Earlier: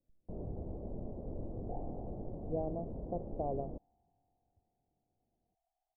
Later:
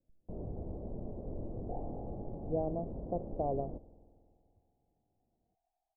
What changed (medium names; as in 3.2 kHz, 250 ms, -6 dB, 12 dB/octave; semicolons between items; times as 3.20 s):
speech +3.0 dB; reverb: on, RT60 2.3 s